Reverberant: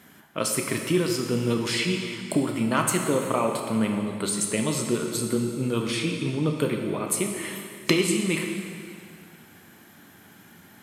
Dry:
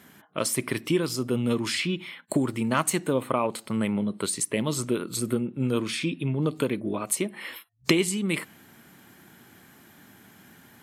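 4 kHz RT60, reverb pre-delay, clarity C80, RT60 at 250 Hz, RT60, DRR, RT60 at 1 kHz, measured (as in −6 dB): 2.2 s, 4 ms, 5.5 dB, 2.3 s, 2.3 s, 2.5 dB, 2.2 s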